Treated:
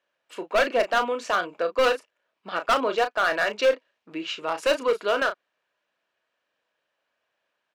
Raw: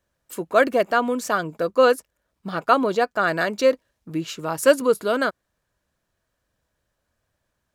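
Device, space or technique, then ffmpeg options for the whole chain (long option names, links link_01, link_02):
megaphone: -filter_complex "[0:a]highpass=460,lowpass=4000,equalizer=frequency=2700:width_type=o:width=0.58:gain=7,asoftclip=type=hard:threshold=-16.5dB,asplit=2[link_01][link_02];[link_02]adelay=34,volume=-9dB[link_03];[link_01][link_03]amix=inputs=2:normalize=0"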